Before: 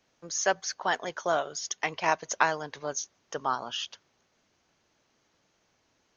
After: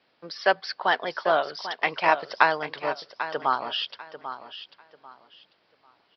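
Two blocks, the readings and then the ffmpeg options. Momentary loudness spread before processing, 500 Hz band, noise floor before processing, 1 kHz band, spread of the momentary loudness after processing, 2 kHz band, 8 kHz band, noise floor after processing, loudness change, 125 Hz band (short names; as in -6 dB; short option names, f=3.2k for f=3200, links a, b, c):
8 LU, +5.0 dB, -72 dBFS, +5.5 dB, 16 LU, +5.5 dB, n/a, -67 dBFS, +4.5 dB, -0.5 dB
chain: -filter_complex "[0:a]highpass=f=290:p=1,aresample=11025,aresample=44100,asplit=2[a][b];[b]aecho=0:1:793|1586|2379:0.266|0.0639|0.0153[c];[a][c]amix=inputs=2:normalize=0,volume=5.5dB"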